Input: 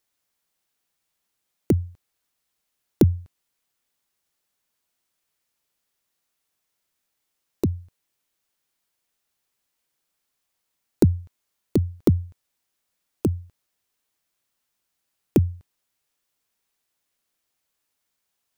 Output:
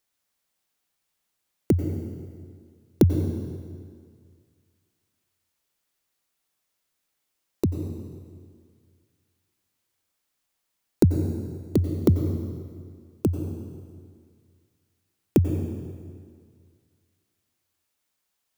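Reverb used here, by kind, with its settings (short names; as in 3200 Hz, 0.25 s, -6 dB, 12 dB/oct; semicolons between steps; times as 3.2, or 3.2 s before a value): plate-style reverb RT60 2 s, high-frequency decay 0.85×, pre-delay 80 ms, DRR 6 dB; gain -1 dB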